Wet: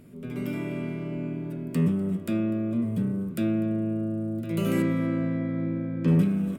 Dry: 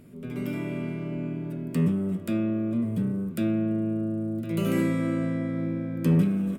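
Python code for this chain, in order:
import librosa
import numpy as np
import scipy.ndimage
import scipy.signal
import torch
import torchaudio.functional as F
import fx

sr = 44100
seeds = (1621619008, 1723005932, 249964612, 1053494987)

p1 = fx.air_absorb(x, sr, metres=140.0, at=(4.82, 6.08))
y = p1 + fx.echo_single(p1, sr, ms=248, db=-20.5, dry=0)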